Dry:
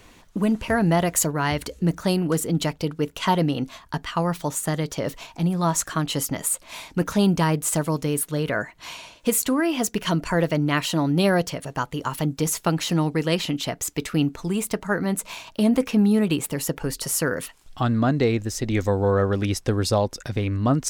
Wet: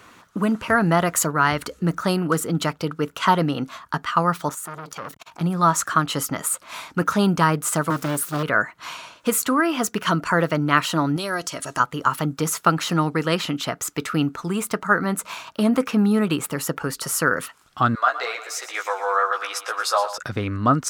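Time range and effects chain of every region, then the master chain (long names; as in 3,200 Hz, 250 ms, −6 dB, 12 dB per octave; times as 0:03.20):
0:04.49–0:05.41: high-shelf EQ 8,300 Hz +5.5 dB + downward compressor 10 to 1, threshold −26 dBFS + saturating transformer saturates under 1,800 Hz
0:07.90–0:08.43: spike at every zero crossing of −29.5 dBFS + parametric band 95 Hz −5.5 dB 0.51 octaves + highs frequency-modulated by the lows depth 0.77 ms
0:11.16–0:11.80: parametric band 7,400 Hz +14 dB 1.9 octaves + comb filter 3.1 ms, depth 38% + downward compressor 4 to 1, threshold −26 dBFS
0:17.95–0:20.18: inverse Chebyshev high-pass filter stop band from 190 Hz, stop band 60 dB + double-tracking delay 16 ms −3.5 dB + repeating echo 116 ms, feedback 58%, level −13 dB
whole clip: high-pass filter 100 Hz 12 dB per octave; parametric band 1,300 Hz +13 dB 0.63 octaves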